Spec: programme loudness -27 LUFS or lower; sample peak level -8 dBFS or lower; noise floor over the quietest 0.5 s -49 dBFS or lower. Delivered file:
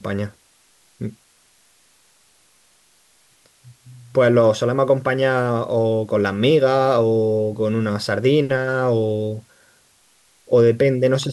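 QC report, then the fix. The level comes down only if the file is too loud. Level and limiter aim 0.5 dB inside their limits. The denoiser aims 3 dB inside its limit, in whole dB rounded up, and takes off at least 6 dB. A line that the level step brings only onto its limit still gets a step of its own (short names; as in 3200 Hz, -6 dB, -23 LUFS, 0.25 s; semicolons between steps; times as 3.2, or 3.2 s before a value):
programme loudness -18.5 LUFS: fail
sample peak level -6.0 dBFS: fail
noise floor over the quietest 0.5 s -57 dBFS: OK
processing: gain -9 dB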